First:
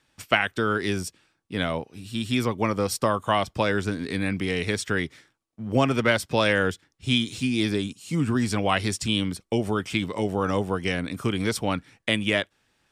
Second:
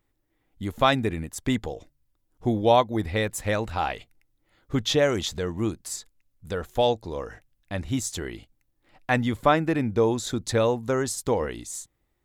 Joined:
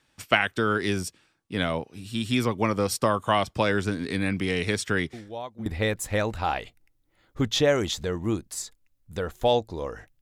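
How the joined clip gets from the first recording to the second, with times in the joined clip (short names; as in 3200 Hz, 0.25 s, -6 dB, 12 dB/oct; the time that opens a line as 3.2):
first
5.13 add second from 2.47 s 0.53 s -17.5 dB
5.66 switch to second from 3 s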